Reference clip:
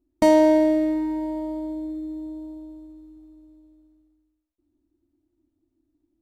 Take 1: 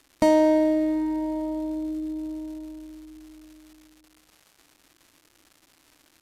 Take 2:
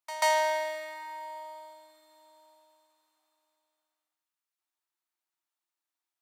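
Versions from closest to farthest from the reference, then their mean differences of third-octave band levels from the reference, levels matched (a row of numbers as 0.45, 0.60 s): 1, 2; 3.0, 7.0 dB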